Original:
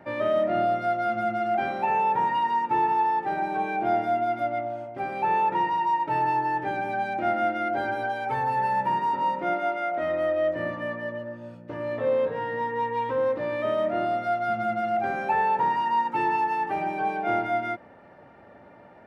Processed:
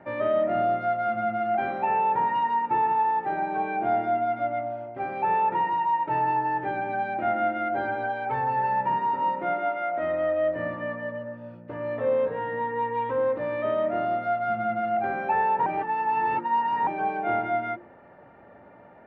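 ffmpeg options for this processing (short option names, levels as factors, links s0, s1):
-filter_complex "[0:a]asplit=3[s0][s1][s2];[s0]atrim=end=15.662[s3];[s1]atrim=start=15.658:end=16.872,asetpts=PTS-STARTPTS,areverse[s4];[s2]atrim=start=16.868[s5];[s3][s4]acrossfade=d=0.004:c1=hsin:c2=hsin[s6];[s6][s5]acrossfade=d=0.004:c1=hsin:c2=hsin,lowpass=2500,bandreject=f=50:t=h:w=6,bandreject=f=100:t=h:w=6,bandreject=f=150:t=h:w=6,bandreject=f=200:t=h:w=6,bandreject=f=250:t=h:w=6,bandreject=f=300:t=h:w=6,bandreject=f=350:t=h:w=6"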